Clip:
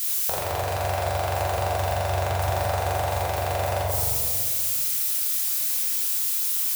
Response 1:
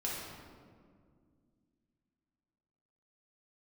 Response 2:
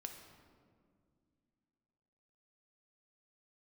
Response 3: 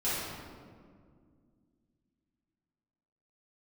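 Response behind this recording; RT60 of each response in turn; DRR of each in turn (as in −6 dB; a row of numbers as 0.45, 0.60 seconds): 1; 2.0, 2.2, 2.0 seconds; −5.5, 4.0, −12.5 decibels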